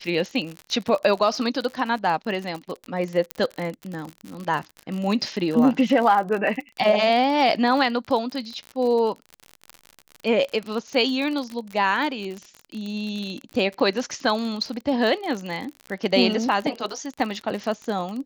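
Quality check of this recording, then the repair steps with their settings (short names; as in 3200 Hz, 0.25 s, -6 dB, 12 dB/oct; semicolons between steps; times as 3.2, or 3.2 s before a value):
crackle 47/s -28 dBFS
3.31 pop -11 dBFS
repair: de-click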